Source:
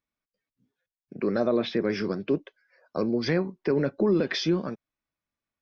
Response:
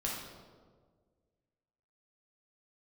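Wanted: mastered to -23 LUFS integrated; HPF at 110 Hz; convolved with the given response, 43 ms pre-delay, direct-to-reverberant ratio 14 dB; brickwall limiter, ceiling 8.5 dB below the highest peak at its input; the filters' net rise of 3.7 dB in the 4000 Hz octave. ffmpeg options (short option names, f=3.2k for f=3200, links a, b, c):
-filter_complex "[0:a]highpass=110,equalizer=f=4k:t=o:g=4.5,alimiter=limit=-21.5dB:level=0:latency=1,asplit=2[a][b];[1:a]atrim=start_sample=2205,adelay=43[c];[b][c]afir=irnorm=-1:irlink=0,volume=-17.5dB[d];[a][d]amix=inputs=2:normalize=0,volume=8dB"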